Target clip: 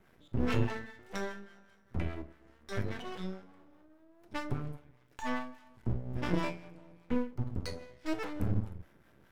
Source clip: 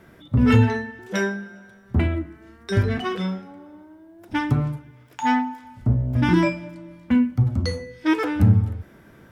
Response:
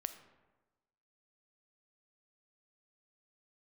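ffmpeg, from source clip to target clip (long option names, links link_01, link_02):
-filter_complex "[0:a]acrossover=split=440[link_01][link_02];[link_01]aeval=exprs='val(0)*(1-0.5/2+0.5/2*cos(2*PI*4.9*n/s))':channel_layout=same[link_03];[link_02]aeval=exprs='val(0)*(1-0.5/2-0.5/2*cos(2*PI*4.9*n/s))':channel_layout=same[link_04];[link_03][link_04]amix=inputs=2:normalize=0,aeval=exprs='max(val(0),0)':channel_layout=same[link_05];[1:a]atrim=start_sample=2205,atrim=end_sample=3969,asetrate=70560,aresample=44100[link_06];[link_05][link_06]afir=irnorm=-1:irlink=0,volume=-1.5dB"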